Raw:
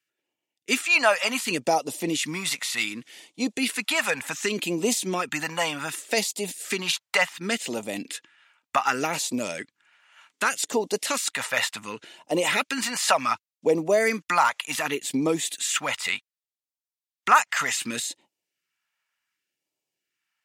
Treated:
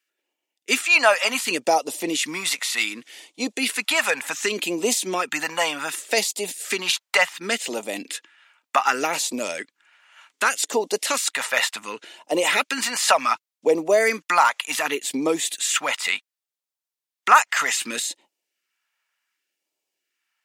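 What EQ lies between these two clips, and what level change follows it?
high-pass 310 Hz 12 dB/octave; +3.5 dB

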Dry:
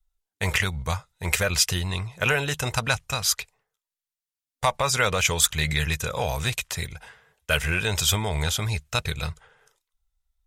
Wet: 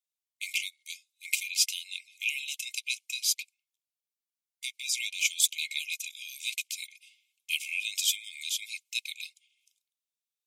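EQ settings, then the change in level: brick-wall FIR high-pass 2.1 kHz; -4.0 dB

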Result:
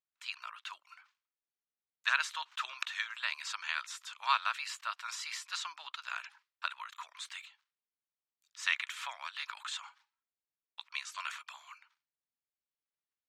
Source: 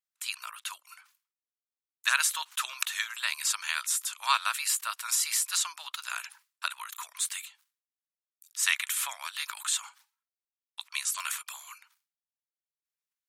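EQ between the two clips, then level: distance through air 190 m; treble shelf 10 kHz +4.5 dB; -2.0 dB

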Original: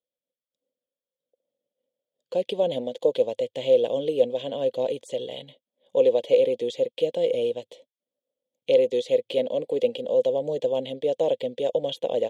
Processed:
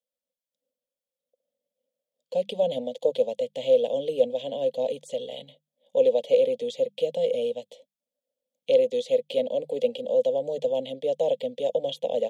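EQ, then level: hum notches 50/100/150/200 Hz; static phaser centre 350 Hz, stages 6; 0.0 dB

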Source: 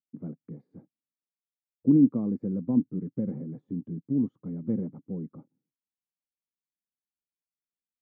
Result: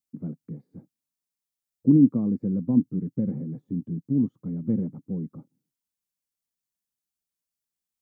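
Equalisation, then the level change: tone controls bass +6 dB, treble +8 dB; 0.0 dB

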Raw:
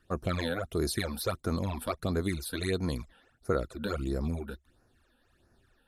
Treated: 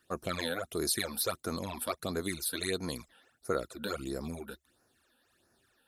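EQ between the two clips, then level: high-pass 270 Hz 6 dB/octave; treble shelf 4.5 kHz +9 dB; -1.5 dB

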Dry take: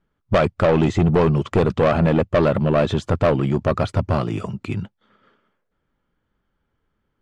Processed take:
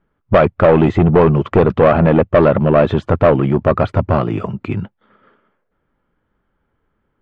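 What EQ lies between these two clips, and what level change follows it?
tone controls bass -3 dB, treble -13 dB; treble shelf 4.5 kHz -10.5 dB; +7.0 dB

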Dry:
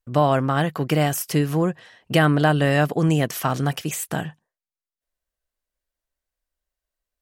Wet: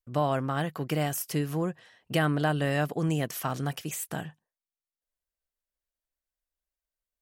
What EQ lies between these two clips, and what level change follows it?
treble shelf 8.7 kHz +4.5 dB; -8.5 dB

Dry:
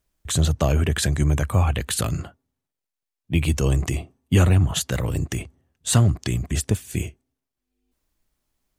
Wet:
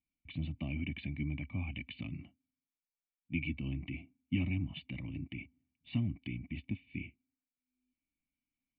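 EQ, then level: cascade formant filter i; tilt EQ +3 dB/octave; static phaser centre 2.2 kHz, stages 8; +3.5 dB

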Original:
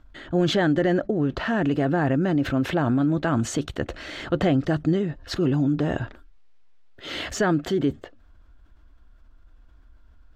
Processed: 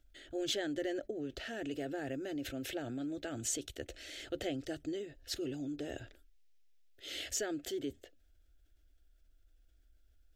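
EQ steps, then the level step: pre-emphasis filter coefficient 0.8; peaking EQ 4.4 kHz -3 dB 0.33 oct; static phaser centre 430 Hz, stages 4; 0.0 dB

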